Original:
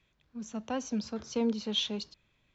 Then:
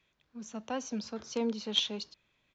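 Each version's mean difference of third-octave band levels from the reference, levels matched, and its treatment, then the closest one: 1.5 dB: low shelf 180 Hz -9.5 dB; in parallel at -5 dB: bit-crush 4-bit; on the sum: downsampling 16000 Hz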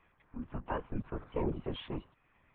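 10.0 dB: compressor 1.5:1, threshold -57 dBFS, peak gain reduction 11.5 dB; speaker cabinet 200–2100 Hz, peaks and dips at 290 Hz -8 dB, 630 Hz -9 dB, 980 Hz +5 dB; LPC vocoder at 8 kHz whisper; gain +10 dB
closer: first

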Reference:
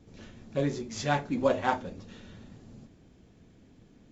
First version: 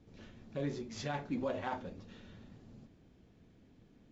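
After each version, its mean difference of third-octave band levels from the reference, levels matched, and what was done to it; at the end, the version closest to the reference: 3.0 dB: limiter -21 dBFS, peak gain reduction 9.5 dB; LPF 5500 Hz 12 dB/oct; gain -5.5 dB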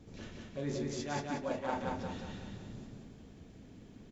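8.5 dB: reverse; compressor 12:1, threshold -35 dBFS, peak gain reduction 16.5 dB; reverse; feedback echo 0.182 s, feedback 45%, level -3 dB; gain +1 dB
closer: first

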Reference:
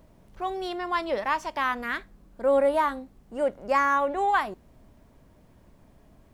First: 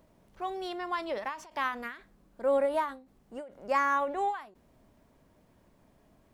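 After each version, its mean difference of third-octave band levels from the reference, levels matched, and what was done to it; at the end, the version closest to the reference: 2.5 dB: low shelf 120 Hz -8.5 dB; ending taper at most 130 dB/s; gain -4 dB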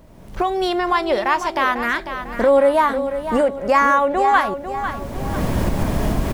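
8.5 dB: recorder AGC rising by 28 dB/s; feedback echo 0.498 s, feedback 43%, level -10 dB; gain +7.5 dB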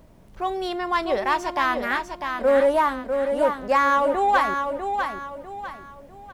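5.5 dB: in parallel at -4 dB: overloaded stage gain 20.5 dB; on the sum: feedback echo 0.649 s, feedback 35%, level -6 dB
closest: first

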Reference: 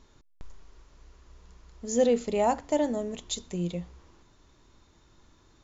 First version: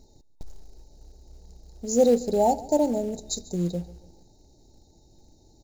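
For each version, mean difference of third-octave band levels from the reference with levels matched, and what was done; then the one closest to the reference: 5.0 dB: FFT band-reject 910–3700 Hz; in parallel at -4.5 dB: short-mantissa float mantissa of 2-bit; on the sum: feedback echo 0.142 s, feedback 39%, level -20 dB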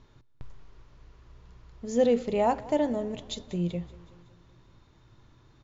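3.0 dB: LPF 4300 Hz 12 dB/oct; bell 120 Hz +14 dB 0.4 oct; feedback echo 0.188 s, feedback 58%, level -20.5 dB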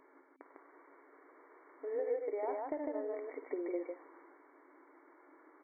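12.5 dB: FFT band-pass 260–2300 Hz; compressor 12:1, threshold -38 dBFS, peak gain reduction 19.5 dB; loudspeakers at several distances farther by 18 m -12 dB, 52 m -2 dB; gain +2 dB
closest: second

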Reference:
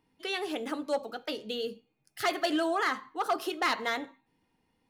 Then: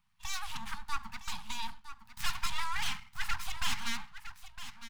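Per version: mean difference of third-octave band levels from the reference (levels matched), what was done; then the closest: 15.0 dB: full-wave rectifier; elliptic band-stop 210–880 Hz, stop band 40 dB; on a send: echo 0.96 s -12 dB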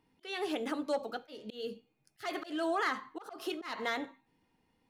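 4.5 dB: high shelf 7800 Hz -4 dB; limiter -24.5 dBFS, peak gain reduction 3 dB; auto swell 0.227 s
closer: second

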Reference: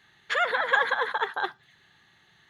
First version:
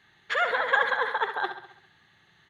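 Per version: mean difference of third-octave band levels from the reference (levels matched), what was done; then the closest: 2.0 dB: high shelf 4500 Hz -6 dB; on a send: feedback echo 67 ms, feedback 54%, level -10 dB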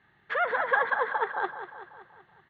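4.5 dB: LPF 1600 Hz 12 dB/oct; feedback echo 0.19 s, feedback 56%, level -11 dB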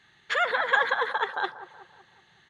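1.0 dB: on a send: dark delay 0.187 s, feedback 48%, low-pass 1300 Hz, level -13.5 dB; on the sum: downsampling 22050 Hz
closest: third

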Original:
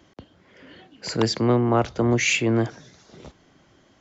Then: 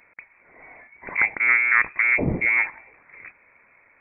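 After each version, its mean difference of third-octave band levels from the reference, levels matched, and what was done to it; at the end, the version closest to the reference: 12.5 dB: bell 100 Hz -7 dB 2 oct; inverted band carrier 2500 Hz; gain +2.5 dB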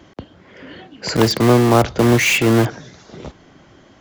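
5.0 dB: high shelf 4000 Hz -6 dB; in parallel at -7 dB: wrapped overs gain 21.5 dB; on the sum: gain +7 dB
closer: second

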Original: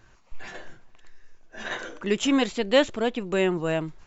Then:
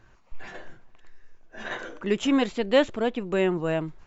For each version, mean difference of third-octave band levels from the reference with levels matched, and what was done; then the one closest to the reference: 1.5 dB: high shelf 3600 Hz -8.5 dB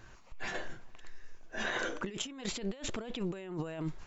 9.0 dB: negative-ratio compressor -34 dBFS, ratio -1; gain -4.5 dB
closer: first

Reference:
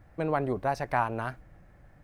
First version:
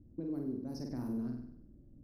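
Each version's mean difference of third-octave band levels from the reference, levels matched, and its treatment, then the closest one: 8.5 dB: low-pass opened by the level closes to 740 Hz, open at -22.5 dBFS; EQ curve 170 Hz 0 dB, 260 Hz +14 dB, 750 Hz -20 dB, 1600 Hz -22 dB, 3200 Hz -24 dB, 5300 Hz +7 dB, 7600 Hz -11 dB, 12000 Hz +11 dB; compressor, threshold -32 dBFS, peak gain reduction 13 dB; flutter echo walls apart 8.3 m, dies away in 0.68 s; gain -5 dB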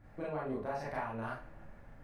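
6.5 dB: high shelf 6100 Hz -5.5 dB; compressor 6:1, threshold -36 dBFS, peak gain reduction 14.5 dB; on a send: analogue delay 0.152 s, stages 4096, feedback 75%, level -24 dB; on the sum: Schroeder reverb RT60 0.33 s, combs from 27 ms, DRR -6.5 dB; gain -5.5 dB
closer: second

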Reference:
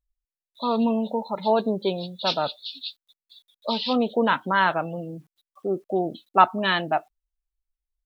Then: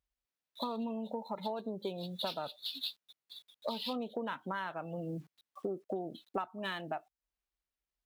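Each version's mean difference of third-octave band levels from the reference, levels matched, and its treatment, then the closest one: 5.5 dB: median filter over 5 samples; HPF 75 Hz 12 dB/oct; compressor 16:1, threshold -35 dBFS, peak gain reduction 26 dB; gain +1 dB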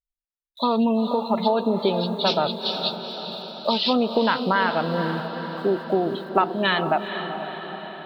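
8.5 dB: gate with hold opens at -47 dBFS; compressor, threshold -25 dBFS, peak gain reduction 15 dB; diffused feedback echo 0.457 s, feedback 60%, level -8.5 dB; gain +7.5 dB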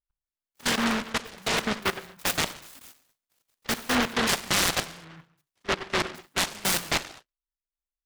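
18.0 dB: level quantiser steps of 24 dB; non-linear reverb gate 0.26 s falling, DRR 9.5 dB; noise-modulated delay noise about 1200 Hz, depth 0.47 ms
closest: first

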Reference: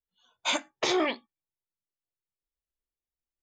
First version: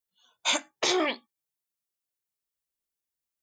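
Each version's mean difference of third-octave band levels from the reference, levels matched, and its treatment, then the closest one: 2.0 dB: HPF 140 Hz 6 dB/oct; high shelf 5400 Hz +9 dB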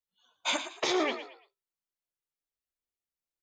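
3.5 dB: low shelf 85 Hz -11 dB; on a send: frequency-shifting echo 0.113 s, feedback 31%, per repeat +53 Hz, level -11 dB; on the sum: gain -2 dB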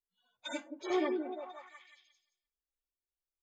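6.0 dB: median-filter separation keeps harmonic; on a send: delay with a stepping band-pass 0.174 s, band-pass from 360 Hz, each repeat 0.7 oct, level -3 dB; on the sum: gain -4 dB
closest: first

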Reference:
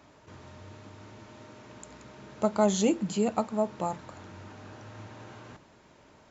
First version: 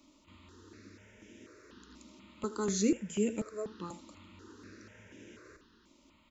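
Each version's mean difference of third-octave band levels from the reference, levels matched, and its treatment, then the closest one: 5.5 dB: fixed phaser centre 310 Hz, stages 4; on a send: echo 79 ms -14.5 dB; on the sum: step phaser 4.1 Hz 440–4300 Hz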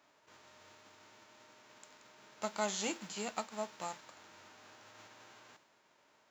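7.5 dB: spectral whitening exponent 0.6; HPF 790 Hz 6 dB/oct; mismatched tape noise reduction decoder only; gain -6.5 dB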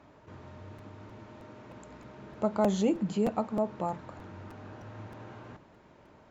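3.0 dB: LPF 1700 Hz 6 dB/oct; in parallel at -1 dB: limiter -24 dBFS, peak gain reduction 11.5 dB; on the sum: crackling interface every 0.31 s, samples 256, repeat, from 0.78; gain -4.5 dB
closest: third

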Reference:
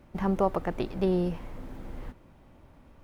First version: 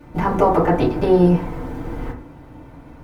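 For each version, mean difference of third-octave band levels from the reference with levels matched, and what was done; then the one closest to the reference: 3.5 dB: FDN reverb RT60 0.44 s, low-frequency decay 1×, high-frequency decay 0.35×, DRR -8 dB; gain +5 dB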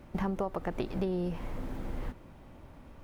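5.5 dB: compressor 12:1, threshold -32 dBFS, peak gain reduction 13.5 dB; gain +3.5 dB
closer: first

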